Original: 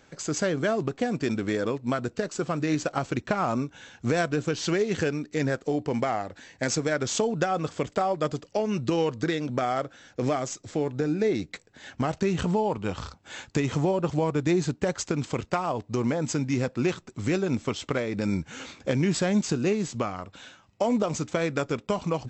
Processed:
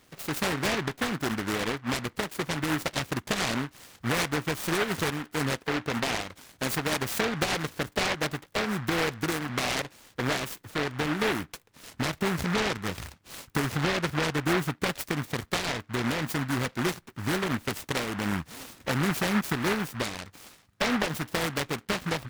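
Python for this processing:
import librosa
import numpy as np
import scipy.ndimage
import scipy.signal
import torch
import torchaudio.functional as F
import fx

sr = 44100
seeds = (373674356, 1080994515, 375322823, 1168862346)

y = fx.noise_mod_delay(x, sr, seeds[0], noise_hz=1300.0, depth_ms=0.32)
y = y * 10.0 ** (-2.5 / 20.0)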